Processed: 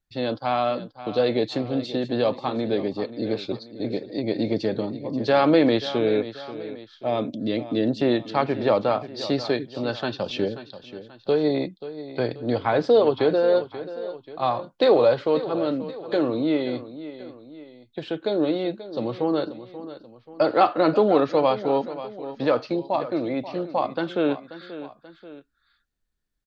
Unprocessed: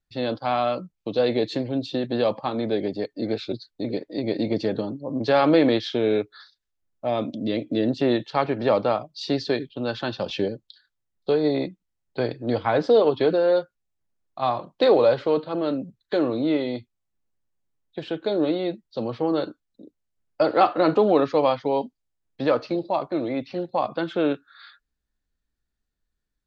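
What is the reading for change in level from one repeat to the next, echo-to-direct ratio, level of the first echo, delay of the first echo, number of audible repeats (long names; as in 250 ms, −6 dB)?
−6.0 dB, −13.0 dB, −14.0 dB, 534 ms, 2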